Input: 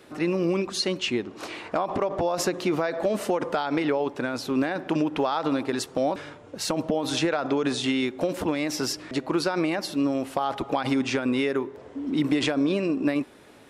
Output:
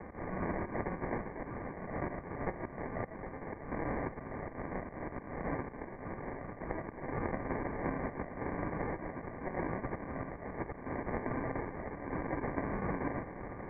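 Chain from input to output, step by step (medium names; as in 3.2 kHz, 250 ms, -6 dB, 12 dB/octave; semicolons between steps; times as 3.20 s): formants flattened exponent 0.1; compression 6:1, threshold -34 dBFS, peak gain reduction 15 dB; slow attack 328 ms; high-pass 160 Hz 24 dB/octave; on a send: thinning echo 353 ms, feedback 71%, high-pass 1.1 kHz, level -12 dB; on the sum: sample-and-hold 34×; steep low-pass 2.3 kHz 96 dB/octave; peaking EQ 1.2 kHz +14.5 dB 0.2 oct; three bands compressed up and down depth 40%; trim +1 dB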